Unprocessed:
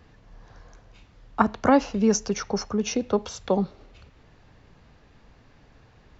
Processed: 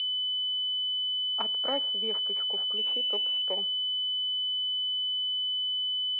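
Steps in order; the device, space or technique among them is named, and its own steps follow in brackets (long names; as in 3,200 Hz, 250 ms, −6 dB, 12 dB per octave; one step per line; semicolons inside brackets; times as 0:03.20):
toy sound module (linearly interpolated sample-rate reduction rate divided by 4×; switching amplifier with a slow clock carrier 3,000 Hz; loudspeaker in its box 670–4,000 Hz, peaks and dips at 760 Hz −6 dB, 1,100 Hz −9 dB, 1,600 Hz −5 dB, 2,300 Hz +5 dB, 3,600 Hz +8 dB)
0:02.77–0:03.42: high shelf with overshoot 3,300 Hz +7 dB, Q 1.5
level −5.5 dB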